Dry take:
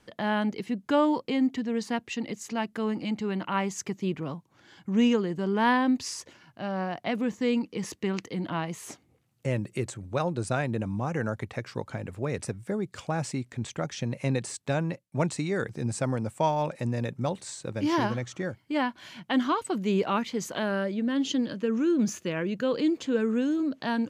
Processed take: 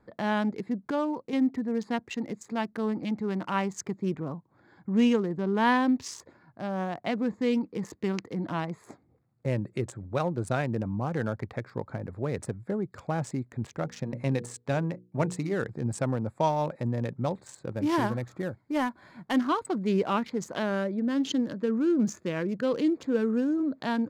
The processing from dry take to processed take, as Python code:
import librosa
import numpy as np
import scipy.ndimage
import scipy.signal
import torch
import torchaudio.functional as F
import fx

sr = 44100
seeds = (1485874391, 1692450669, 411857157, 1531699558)

y = fx.hum_notches(x, sr, base_hz=60, count=8, at=(13.67, 15.54))
y = fx.cvsd(y, sr, bps=64000, at=(17.74, 19.36))
y = fx.edit(y, sr, fx.clip_gain(start_s=0.91, length_s=0.42, db=-5.5), tone=tone)
y = fx.wiener(y, sr, points=15)